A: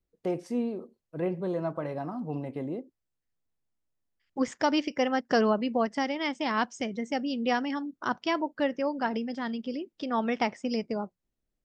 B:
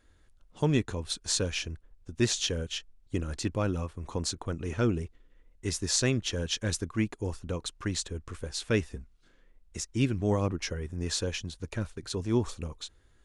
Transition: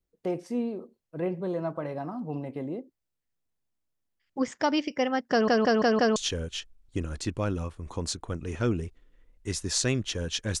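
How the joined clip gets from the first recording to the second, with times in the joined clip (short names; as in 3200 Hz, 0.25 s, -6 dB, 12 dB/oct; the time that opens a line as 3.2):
A
5.31 stutter in place 0.17 s, 5 plays
6.16 switch to B from 2.34 s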